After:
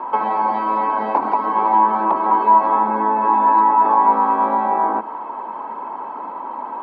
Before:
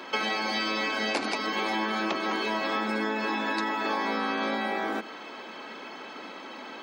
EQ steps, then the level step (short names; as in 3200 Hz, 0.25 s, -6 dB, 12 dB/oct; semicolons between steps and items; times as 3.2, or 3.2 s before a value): synth low-pass 960 Hz, resonance Q 12; +3.5 dB